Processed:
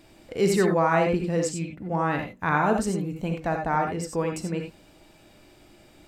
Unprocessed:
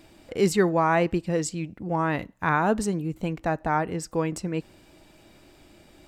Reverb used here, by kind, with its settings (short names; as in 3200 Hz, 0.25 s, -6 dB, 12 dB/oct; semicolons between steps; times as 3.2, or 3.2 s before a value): non-linear reverb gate 0.11 s rising, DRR 3 dB; gain -1.5 dB